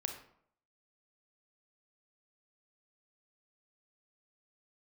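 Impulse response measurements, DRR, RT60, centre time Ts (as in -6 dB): 4.0 dB, 0.65 s, 20 ms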